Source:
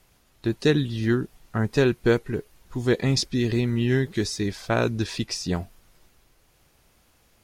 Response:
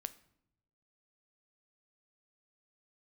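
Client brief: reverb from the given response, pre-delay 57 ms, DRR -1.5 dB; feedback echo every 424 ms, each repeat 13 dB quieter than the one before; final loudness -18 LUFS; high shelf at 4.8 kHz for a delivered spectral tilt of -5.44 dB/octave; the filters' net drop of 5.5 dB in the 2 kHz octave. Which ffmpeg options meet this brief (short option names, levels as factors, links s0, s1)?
-filter_complex "[0:a]equalizer=f=2000:t=o:g=-8.5,highshelf=f=4800:g=6,aecho=1:1:424|848|1272:0.224|0.0493|0.0108,asplit=2[s0][s1];[1:a]atrim=start_sample=2205,adelay=57[s2];[s1][s2]afir=irnorm=-1:irlink=0,volume=1.58[s3];[s0][s3]amix=inputs=2:normalize=0,volume=1.5"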